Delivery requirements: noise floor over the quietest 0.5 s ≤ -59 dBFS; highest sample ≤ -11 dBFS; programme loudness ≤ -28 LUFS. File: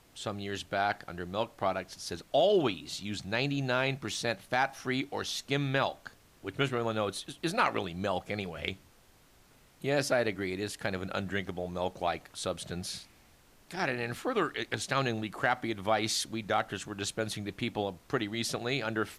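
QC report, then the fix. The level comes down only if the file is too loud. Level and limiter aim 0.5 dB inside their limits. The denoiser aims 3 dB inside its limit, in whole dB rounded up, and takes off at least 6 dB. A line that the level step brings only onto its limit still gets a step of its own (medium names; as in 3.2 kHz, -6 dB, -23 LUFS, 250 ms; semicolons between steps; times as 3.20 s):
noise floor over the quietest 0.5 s -61 dBFS: pass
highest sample -14.0 dBFS: pass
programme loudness -32.5 LUFS: pass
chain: none needed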